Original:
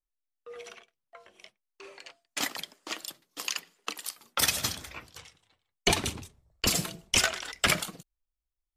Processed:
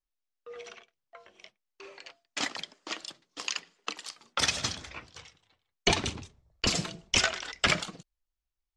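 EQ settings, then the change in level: low-pass 6.9 kHz 24 dB/octave; 0.0 dB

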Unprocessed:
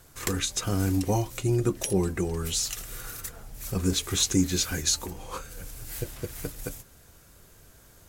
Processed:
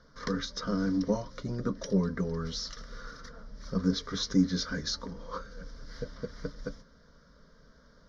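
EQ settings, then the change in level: elliptic low-pass 5.4 kHz, stop band 40 dB; peaking EQ 220 Hz +3.5 dB 2.4 oct; static phaser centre 520 Hz, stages 8; 0.0 dB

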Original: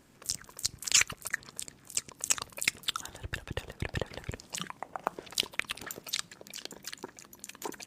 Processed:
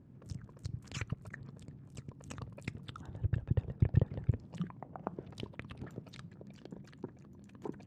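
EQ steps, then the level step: band-pass filter 120 Hz, Q 1.5; +11.5 dB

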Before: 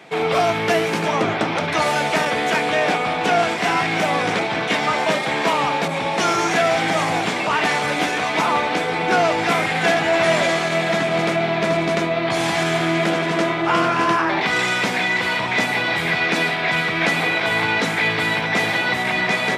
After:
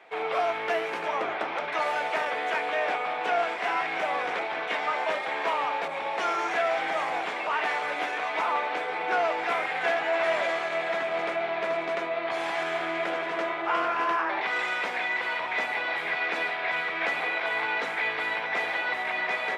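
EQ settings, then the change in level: three-band isolator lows -22 dB, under 400 Hz, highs -13 dB, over 3 kHz; -7.0 dB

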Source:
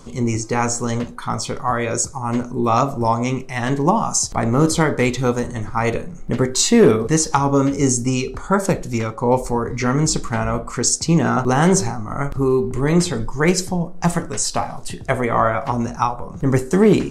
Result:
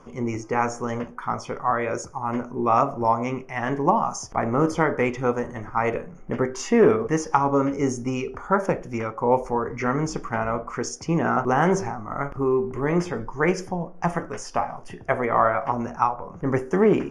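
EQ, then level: boxcar filter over 11 samples; bass shelf 270 Hz -12 dB; 0.0 dB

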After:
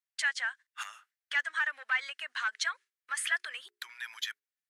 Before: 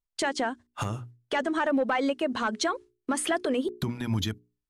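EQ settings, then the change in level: ladder high-pass 1.5 kHz, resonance 55%; +6.0 dB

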